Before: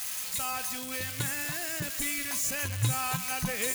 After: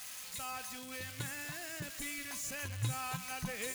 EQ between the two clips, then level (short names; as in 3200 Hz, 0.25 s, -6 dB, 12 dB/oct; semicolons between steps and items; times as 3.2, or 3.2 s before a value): high shelf 8800 Hz -6.5 dB; -7.5 dB